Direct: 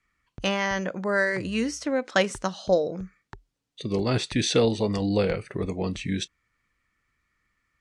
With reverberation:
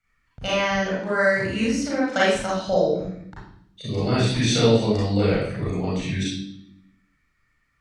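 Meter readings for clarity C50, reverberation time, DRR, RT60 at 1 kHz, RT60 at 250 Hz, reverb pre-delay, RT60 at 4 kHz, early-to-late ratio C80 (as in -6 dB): -1.5 dB, 0.70 s, -7.5 dB, 0.60 s, 1.2 s, 32 ms, 0.70 s, 4.5 dB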